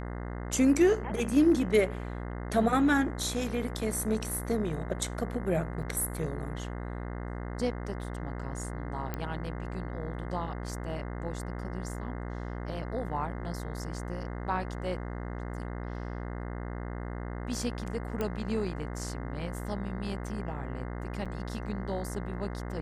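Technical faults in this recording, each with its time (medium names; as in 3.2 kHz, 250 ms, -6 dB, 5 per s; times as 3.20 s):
buzz 60 Hz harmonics 35 -37 dBFS
5.82–5.83 s: dropout 5.7 ms
9.14 s: pop -19 dBFS
18.21 s: pop -19 dBFS
21.25–21.26 s: dropout 6.5 ms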